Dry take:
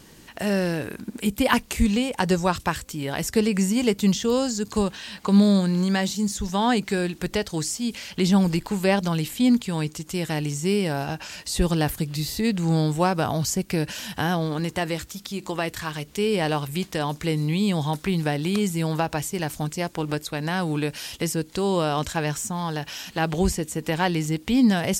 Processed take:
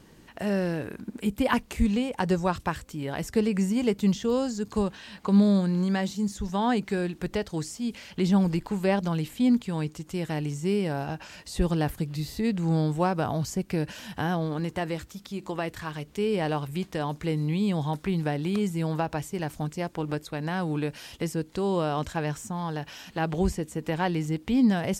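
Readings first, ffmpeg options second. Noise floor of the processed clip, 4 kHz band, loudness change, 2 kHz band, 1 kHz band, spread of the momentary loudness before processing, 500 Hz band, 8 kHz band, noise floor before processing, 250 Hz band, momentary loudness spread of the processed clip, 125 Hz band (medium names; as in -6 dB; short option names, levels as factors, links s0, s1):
-52 dBFS, -9.0 dB, -3.5 dB, -6.0 dB, -4.0 dB, 8 LU, -3.5 dB, -11.0 dB, -48 dBFS, -3.0 dB, 9 LU, -3.0 dB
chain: -af "highshelf=f=2600:g=-9,volume=0.708"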